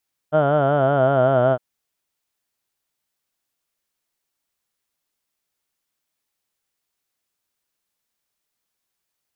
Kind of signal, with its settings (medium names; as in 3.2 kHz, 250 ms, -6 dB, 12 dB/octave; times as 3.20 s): formant vowel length 1.26 s, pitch 149 Hz, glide -3 st, F1 640 Hz, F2 1.4 kHz, F3 3.1 kHz